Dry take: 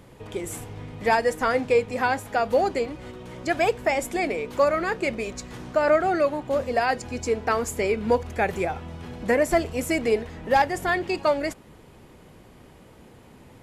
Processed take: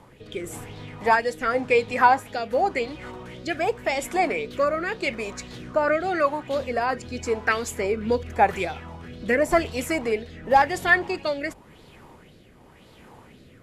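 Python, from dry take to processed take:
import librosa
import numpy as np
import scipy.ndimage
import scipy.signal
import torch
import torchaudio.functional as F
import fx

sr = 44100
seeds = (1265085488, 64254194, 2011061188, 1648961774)

y = fx.rotary(x, sr, hz=0.9)
y = fx.hum_notches(y, sr, base_hz=50, count=2)
y = fx.bell_lfo(y, sr, hz=1.9, low_hz=870.0, high_hz=4200.0, db=12)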